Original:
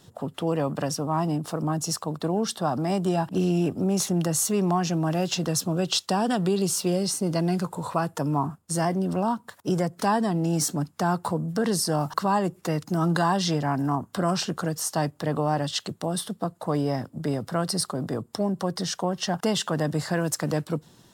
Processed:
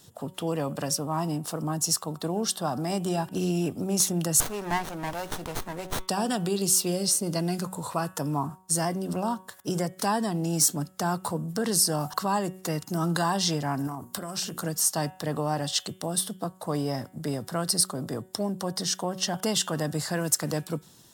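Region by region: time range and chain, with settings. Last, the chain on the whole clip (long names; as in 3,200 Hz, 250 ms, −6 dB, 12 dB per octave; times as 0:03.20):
0:04.40–0:06.08: high-pass filter 540 Hz 6 dB per octave + parametric band 930 Hz +12.5 dB 0.33 octaves + windowed peak hold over 17 samples
0:13.87–0:14.63: high-shelf EQ 9,600 Hz +9.5 dB + mains-hum notches 60/120/180/240/300/360/420/480 Hz + downward compressor 12 to 1, threshold −27 dBFS
whole clip: high-shelf EQ 4,900 Hz +12 dB; hum removal 186.8 Hz, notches 19; level −3.5 dB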